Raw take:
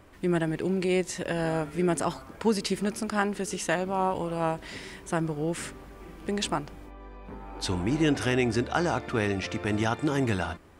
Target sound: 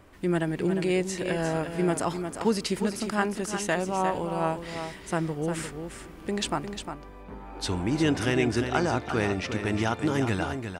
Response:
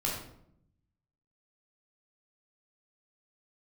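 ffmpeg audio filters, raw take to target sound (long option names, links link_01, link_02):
-af "aecho=1:1:354:0.398"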